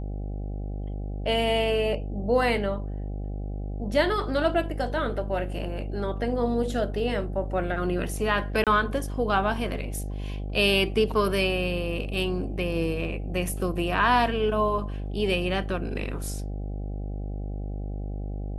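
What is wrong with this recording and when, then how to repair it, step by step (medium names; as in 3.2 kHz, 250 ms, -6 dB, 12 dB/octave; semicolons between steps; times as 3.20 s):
buzz 50 Hz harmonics 16 -32 dBFS
8.64–8.67 s: dropout 27 ms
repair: de-hum 50 Hz, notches 16; interpolate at 8.64 s, 27 ms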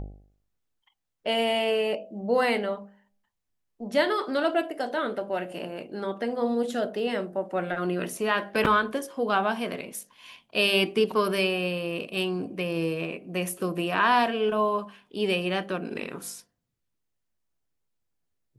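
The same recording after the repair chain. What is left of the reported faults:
nothing left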